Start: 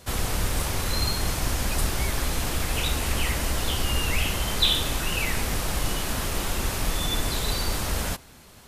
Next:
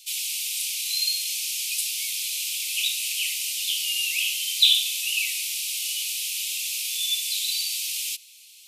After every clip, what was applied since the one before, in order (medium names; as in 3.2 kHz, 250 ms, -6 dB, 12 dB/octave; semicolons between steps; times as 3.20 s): steep high-pass 2.4 kHz 72 dB/octave; trim +5 dB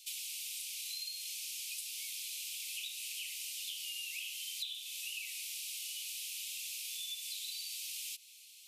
compression 10:1, threshold -32 dBFS, peak gain reduction 19.5 dB; trim -7 dB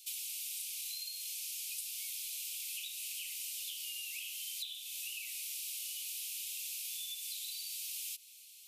treble shelf 10 kHz +10 dB; trim -3 dB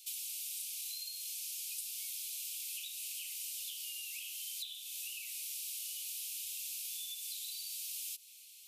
dynamic bell 1.7 kHz, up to -5 dB, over -59 dBFS, Q 0.85